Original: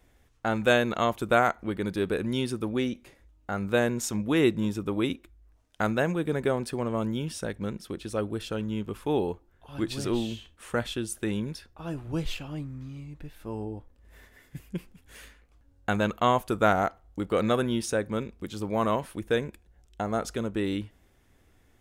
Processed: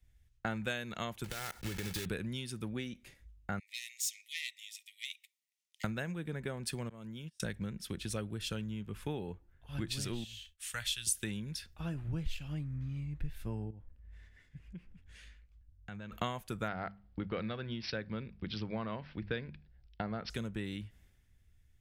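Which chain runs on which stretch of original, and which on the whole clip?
0:01.24–0:02.06: one scale factor per block 3 bits + comb filter 2.3 ms, depth 38% + downward compressor 12 to 1, threshold −30 dBFS
0:03.59–0:05.84: phase distortion by the signal itself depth 0.072 ms + linear-phase brick-wall high-pass 1,800 Hz + downward compressor 1.5 to 1, threshold −58 dBFS
0:06.89–0:07.40: noise gate −32 dBFS, range −34 dB + low-shelf EQ 72 Hz −11 dB + downward compressor 2 to 1, threshold −48 dBFS
0:10.24–0:11.07: guitar amp tone stack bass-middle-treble 10-0-10 + downward expander −60 dBFS
0:13.70–0:16.12: high-frequency loss of the air 84 metres + downward compressor 2.5 to 1, threshold −50 dBFS
0:16.68–0:20.30: high-shelf EQ 9,000 Hz −9 dB + mains-hum notches 50/100/150/200/250 Hz + bad sample-rate conversion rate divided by 4×, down none, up filtered
whole clip: flat-topped bell 570 Hz −9 dB 2.6 octaves; downward compressor 16 to 1, threshold −40 dBFS; multiband upward and downward expander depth 70%; level +5.5 dB

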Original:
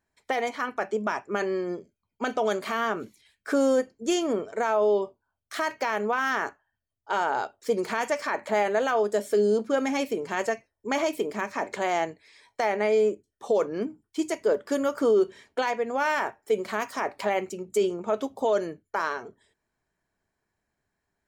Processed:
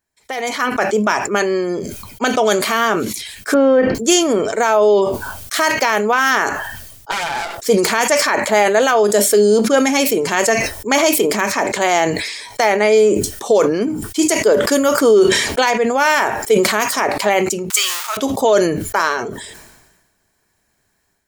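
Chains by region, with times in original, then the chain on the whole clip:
0:03.54–0:03.95: low-pass filter 2,600 Hz 24 dB per octave + notch filter 230 Hz, Q 6.7
0:07.11–0:07.58: lower of the sound and its delayed copy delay 5.9 ms + high-pass filter 340 Hz + tube saturation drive 28 dB, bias 0.7
0:17.70–0:18.17: converter with a step at zero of −35.5 dBFS + high-pass filter 1,100 Hz 24 dB per octave
whole clip: automatic gain control gain up to 14 dB; high-shelf EQ 3,700 Hz +11.5 dB; level that may fall only so fast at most 46 dB per second; level −2 dB

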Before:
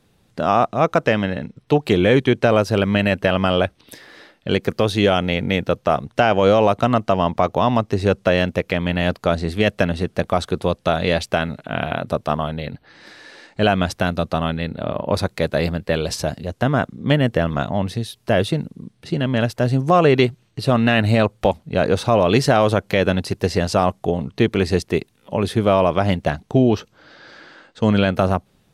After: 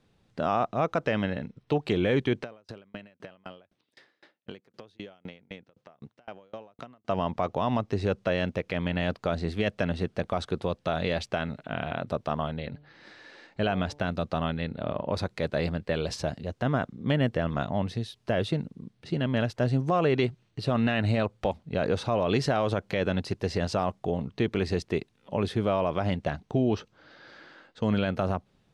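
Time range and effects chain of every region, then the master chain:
0:02.43–0:07.09: high-pass filter 130 Hz + downward compressor 4 to 1, threshold −26 dBFS + tremolo with a ramp in dB decaying 3.9 Hz, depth 34 dB
0:12.59–0:14.09: high-shelf EQ 9,700 Hz −8.5 dB + hum removal 146.6 Hz, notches 7
whole clip: Bessel low-pass filter 5,700 Hz, order 2; brickwall limiter −8 dBFS; level −7 dB

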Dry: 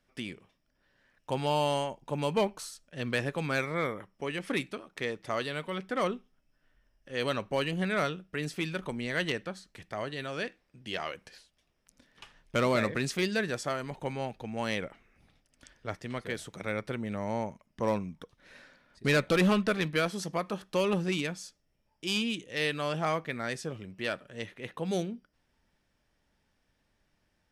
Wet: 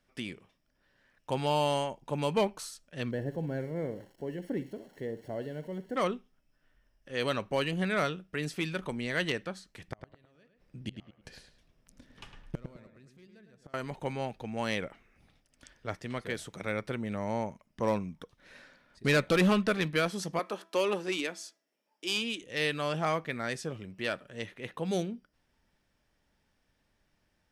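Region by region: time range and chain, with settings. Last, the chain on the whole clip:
0:03.11–0:05.96: spike at every zero crossing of −27.5 dBFS + moving average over 36 samples + flutter between parallel walls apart 10.4 metres, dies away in 0.26 s
0:09.88–0:13.74: low-shelf EQ 350 Hz +10.5 dB + gate with flip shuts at −24 dBFS, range −33 dB + feedback echo with a low-pass in the loop 106 ms, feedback 32%, low-pass 3,000 Hz, level −6.5 dB
0:20.39–0:22.42: high-pass filter 260 Hz 24 dB per octave + hum removal 330.1 Hz, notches 7
whole clip: no processing

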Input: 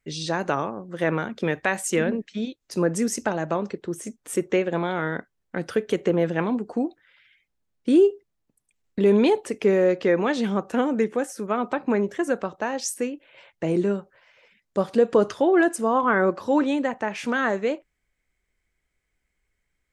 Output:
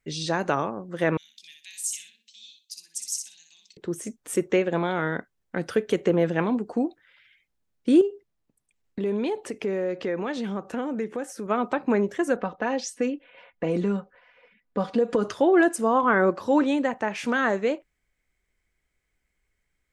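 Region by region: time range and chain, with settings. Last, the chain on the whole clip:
0:01.17–0:03.77: inverse Chebyshev high-pass filter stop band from 1,400 Hz, stop band 50 dB + repeating echo 61 ms, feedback 24%, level −5 dB
0:08.01–0:11.46: high-shelf EQ 5,800 Hz −4.5 dB + downward compressor 2 to 1, threshold −30 dBFS
0:12.36–0:15.25: comb filter 4.1 ms, depth 68% + low-pass that shuts in the quiet parts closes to 2,200 Hz, open at −13.5 dBFS + downward compressor 3 to 1, threshold −20 dBFS
whole clip: no processing

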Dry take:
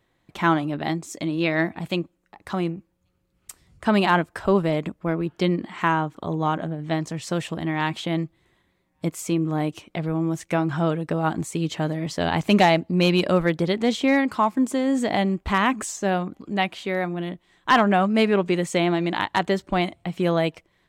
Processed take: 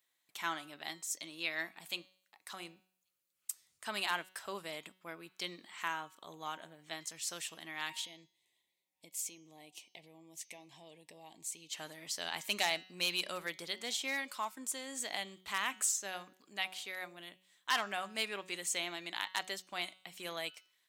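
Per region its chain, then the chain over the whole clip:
0:08.06–0:11.73: high-shelf EQ 6,100 Hz −7 dB + downward compressor 3 to 1, threshold −30 dBFS + Butterworth band-reject 1,400 Hz, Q 1.3
whole clip: first difference; hum removal 186.4 Hz, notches 35

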